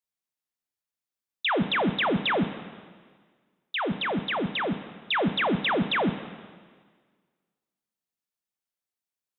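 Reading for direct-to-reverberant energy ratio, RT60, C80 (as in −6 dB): 10.0 dB, 1.6 s, 12.5 dB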